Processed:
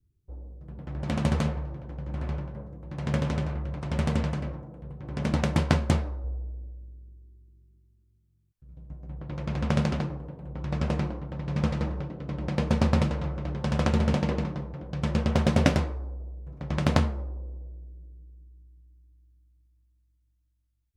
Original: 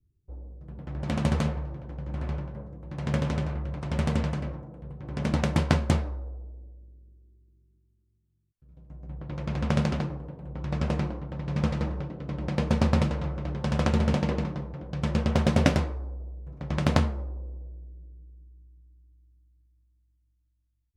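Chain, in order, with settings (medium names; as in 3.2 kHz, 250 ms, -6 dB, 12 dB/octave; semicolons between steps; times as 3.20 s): 6.24–8.94 s: bass shelf 180 Hz +6.5 dB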